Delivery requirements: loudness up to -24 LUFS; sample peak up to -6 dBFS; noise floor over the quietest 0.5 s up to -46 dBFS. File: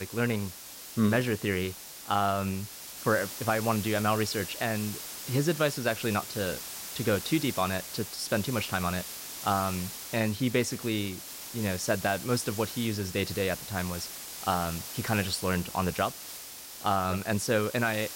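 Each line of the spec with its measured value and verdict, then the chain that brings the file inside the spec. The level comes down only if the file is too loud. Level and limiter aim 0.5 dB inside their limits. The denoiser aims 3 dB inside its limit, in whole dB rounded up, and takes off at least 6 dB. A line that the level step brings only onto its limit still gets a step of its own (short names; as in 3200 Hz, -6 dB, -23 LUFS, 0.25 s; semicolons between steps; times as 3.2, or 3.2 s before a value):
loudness -30.0 LUFS: OK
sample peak -14.0 dBFS: OK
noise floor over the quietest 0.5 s -44 dBFS: fail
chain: denoiser 6 dB, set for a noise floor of -44 dBFS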